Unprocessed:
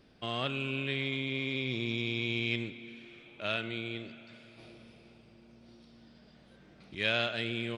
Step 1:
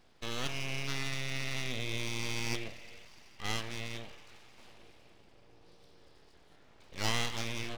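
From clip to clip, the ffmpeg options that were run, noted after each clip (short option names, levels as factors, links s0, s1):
-af "bandreject=f=50:t=h:w=6,bandreject=f=100:t=h:w=6,bandreject=f=150:t=h:w=6,bandreject=f=200:t=h:w=6,bandreject=f=250:t=h:w=6,bandreject=f=300:t=h:w=6,bandreject=f=350:t=h:w=6,aeval=exprs='abs(val(0))':c=same"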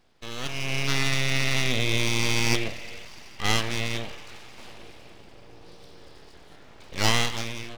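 -af "dynaudnorm=f=190:g=7:m=3.98"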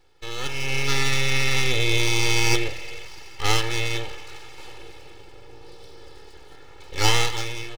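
-af "aecho=1:1:2.3:0.95"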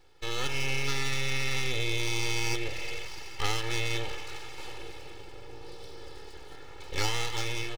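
-af "acompressor=threshold=0.0708:ratio=10"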